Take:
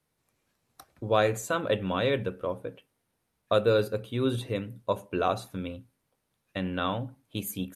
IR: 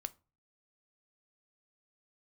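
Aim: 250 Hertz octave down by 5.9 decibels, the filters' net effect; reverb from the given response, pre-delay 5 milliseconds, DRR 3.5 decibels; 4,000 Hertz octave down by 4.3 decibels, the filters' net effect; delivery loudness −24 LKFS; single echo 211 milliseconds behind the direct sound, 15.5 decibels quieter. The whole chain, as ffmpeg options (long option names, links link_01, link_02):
-filter_complex "[0:a]equalizer=frequency=250:width_type=o:gain=-8,equalizer=frequency=4000:width_type=o:gain=-5,aecho=1:1:211:0.168,asplit=2[link_01][link_02];[1:a]atrim=start_sample=2205,adelay=5[link_03];[link_02][link_03]afir=irnorm=-1:irlink=0,volume=-1dB[link_04];[link_01][link_04]amix=inputs=2:normalize=0,volume=6.5dB"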